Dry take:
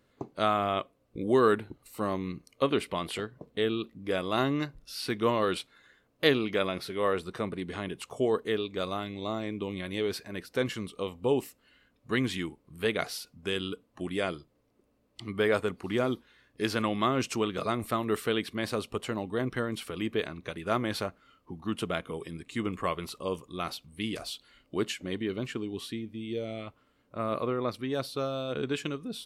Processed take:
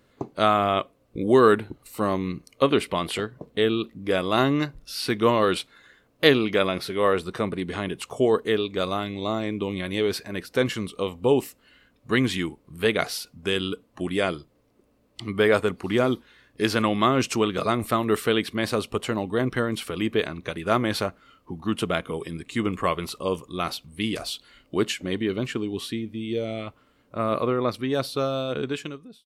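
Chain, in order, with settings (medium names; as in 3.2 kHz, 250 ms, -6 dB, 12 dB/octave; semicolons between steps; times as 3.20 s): fade out at the end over 0.86 s; trim +6.5 dB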